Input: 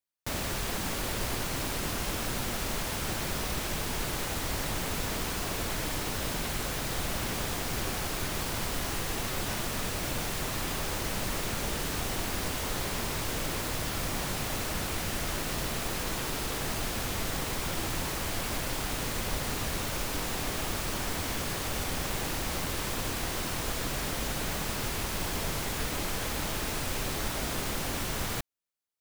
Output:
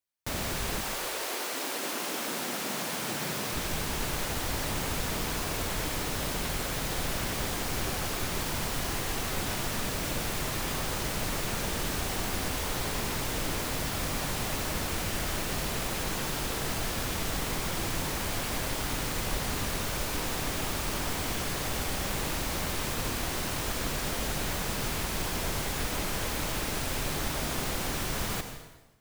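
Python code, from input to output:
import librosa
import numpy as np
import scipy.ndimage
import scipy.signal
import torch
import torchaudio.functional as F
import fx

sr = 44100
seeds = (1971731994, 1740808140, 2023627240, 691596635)

y = fx.highpass(x, sr, hz=fx.line((0.8, 430.0), (3.53, 110.0)), slope=24, at=(0.8, 3.53), fade=0.02)
y = fx.rev_plate(y, sr, seeds[0], rt60_s=1.1, hf_ratio=0.9, predelay_ms=75, drr_db=7.0)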